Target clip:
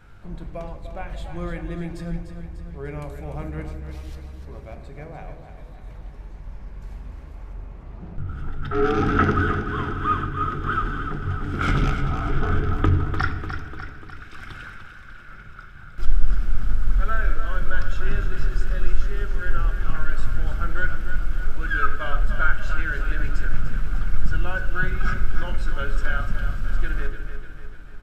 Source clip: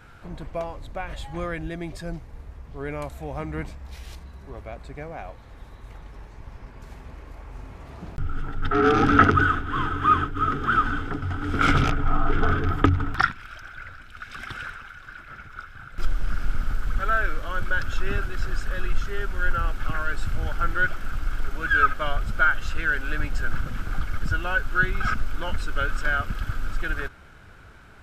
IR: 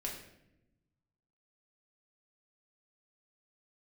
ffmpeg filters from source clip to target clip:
-filter_complex "[0:a]asettb=1/sr,asplit=3[s0][s1][s2];[s0]atrim=end=7.534[s3];[s1]atrim=start=7.53:end=8.28,asetpts=PTS-STARTPTS,afade=t=in:d=0.004:c=qsin,afade=t=out:st=0.746:d=0.004:c=qsin,lowpass=f=2000:p=1[s4];[s2]atrim=start=8.276[s5];[s3][s4]acrossfade=d=0.004:c1=hsin:c2=qsin[s6];[s6][s5]acrossfade=d=0.004:c1=qsin:c2=hsin,aecho=1:1:297|594|891|1188|1485|1782|2079:0.355|0.202|0.115|0.0657|0.0375|0.0213|0.0122,asplit=2[s7][s8];[1:a]atrim=start_sample=2205,lowshelf=f=390:g=10[s9];[s8][s9]afir=irnorm=-1:irlink=0,volume=0.668[s10];[s7][s10]amix=inputs=2:normalize=0,volume=0.376"

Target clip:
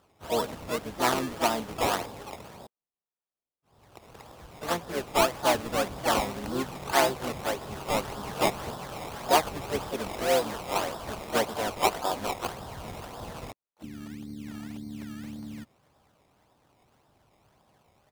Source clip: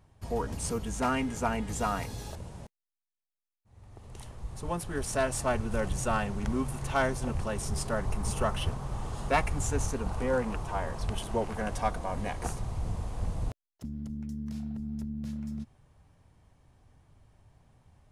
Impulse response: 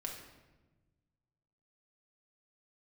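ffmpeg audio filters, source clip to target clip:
-filter_complex "[0:a]bandpass=f=690:t=q:w=0.91:csg=0,acrusher=samples=20:mix=1:aa=0.000001:lfo=1:lforange=20:lforate=1.8,asplit=3[s0][s1][s2];[s1]asetrate=22050,aresample=44100,atempo=2,volume=0.316[s3];[s2]asetrate=58866,aresample=44100,atempo=0.749154,volume=0.562[s4];[s0][s3][s4]amix=inputs=3:normalize=0,volume=1.78"

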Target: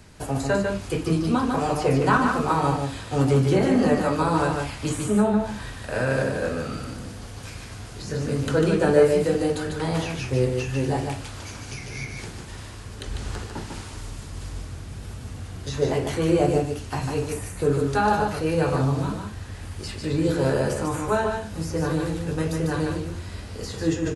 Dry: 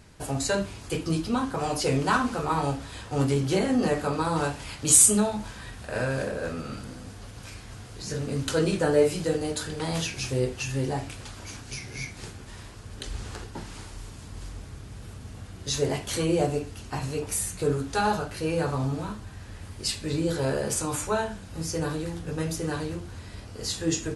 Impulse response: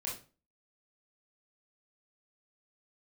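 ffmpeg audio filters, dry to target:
-filter_complex "[0:a]acrossover=split=220|1400|2200[s0][s1][s2][s3];[s3]acompressor=threshold=0.00631:ratio=5[s4];[s0][s1][s2][s4]amix=inputs=4:normalize=0,aecho=1:1:148:0.596,volume=1.5"

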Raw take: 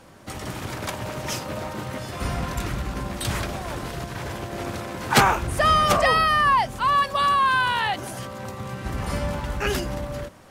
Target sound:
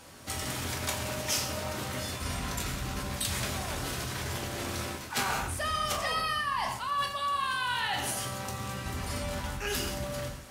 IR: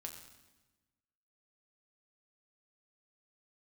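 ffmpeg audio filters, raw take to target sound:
-filter_complex "[1:a]atrim=start_sample=2205,afade=t=out:st=0.27:d=0.01,atrim=end_sample=12348[s0];[0:a][s0]afir=irnorm=-1:irlink=0,areverse,acompressor=threshold=0.0251:ratio=5,areverse,highshelf=f=2300:g=11"

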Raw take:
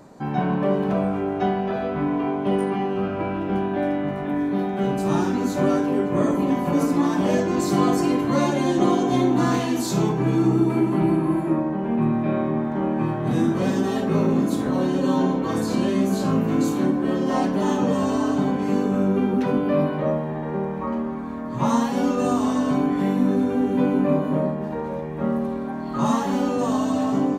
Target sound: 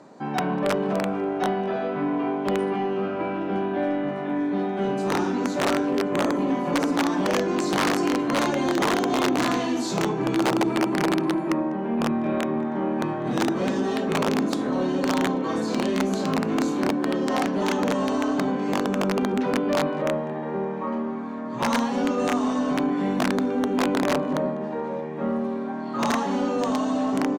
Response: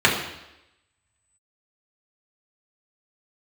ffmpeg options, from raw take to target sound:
-filter_complex "[0:a]asplit=2[s0][s1];[1:a]atrim=start_sample=2205,atrim=end_sample=4410,adelay=75[s2];[s1][s2]afir=irnorm=-1:irlink=0,volume=0.0075[s3];[s0][s3]amix=inputs=2:normalize=0,aeval=exprs='(mod(3.98*val(0)+1,2)-1)/3.98':c=same,highpass=210,lowpass=6600,asplit=2[s4][s5];[s5]adelay=198.3,volume=0.0501,highshelf=f=4000:g=-4.46[s6];[s4][s6]amix=inputs=2:normalize=0,asoftclip=type=tanh:threshold=0.188"

